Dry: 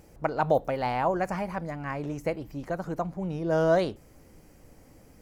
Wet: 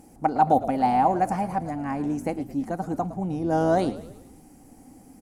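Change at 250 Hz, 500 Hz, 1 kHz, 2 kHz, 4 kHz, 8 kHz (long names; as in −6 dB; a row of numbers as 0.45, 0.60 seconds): +6.5 dB, −0.5 dB, +8.0 dB, −2.5 dB, −1.5 dB, can't be measured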